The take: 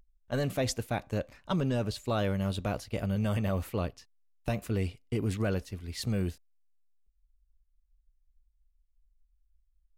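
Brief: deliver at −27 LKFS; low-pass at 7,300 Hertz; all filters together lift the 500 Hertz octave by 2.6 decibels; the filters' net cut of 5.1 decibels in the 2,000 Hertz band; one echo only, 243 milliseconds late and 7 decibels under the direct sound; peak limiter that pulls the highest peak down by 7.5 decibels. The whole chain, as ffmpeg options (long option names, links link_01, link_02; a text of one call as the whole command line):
ffmpeg -i in.wav -af "lowpass=7300,equalizer=frequency=500:width_type=o:gain=3.5,equalizer=frequency=2000:width_type=o:gain=-7.5,alimiter=level_in=3dB:limit=-24dB:level=0:latency=1,volume=-3dB,aecho=1:1:243:0.447,volume=9.5dB" out.wav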